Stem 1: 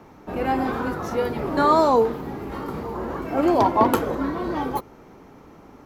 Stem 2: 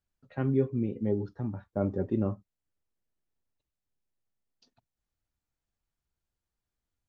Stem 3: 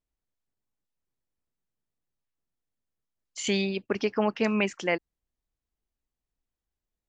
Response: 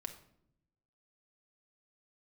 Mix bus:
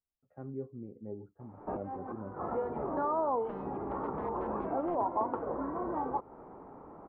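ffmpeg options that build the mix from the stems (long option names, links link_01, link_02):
-filter_complex "[0:a]acompressor=threshold=-30dB:ratio=4,lowshelf=frequency=420:gain=-4,adelay=1400,volume=2dB[link_01];[1:a]bandreject=frequency=980:width=5.6,volume=-10dB,asplit=2[link_02][link_03];[2:a]aeval=exprs='(mod(8.41*val(0)+1,2)-1)/8.41':channel_layout=same,volume=-12dB[link_04];[link_03]apad=whole_len=320163[link_05];[link_01][link_05]sidechaincompress=threshold=-48dB:ratio=12:attack=16:release=130[link_06];[link_06][link_02][link_04]amix=inputs=3:normalize=0,lowpass=frequency=1000:width=0.5412,lowpass=frequency=1000:width=1.3066,lowshelf=frequency=410:gain=-6.5,crystalizer=i=6:c=0"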